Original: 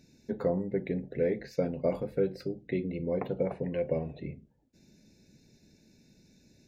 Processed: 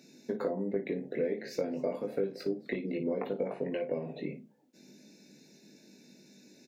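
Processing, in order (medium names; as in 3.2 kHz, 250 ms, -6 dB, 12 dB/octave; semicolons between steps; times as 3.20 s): high-pass 200 Hz 24 dB/octave; compression 6:1, threshold -35 dBFS, peak gain reduction 12 dB; early reflections 20 ms -4.5 dB, 56 ms -11.5 dB; 0.89–2.98 s: modulated delay 256 ms, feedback 32%, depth 188 cents, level -21 dB; trim +4.5 dB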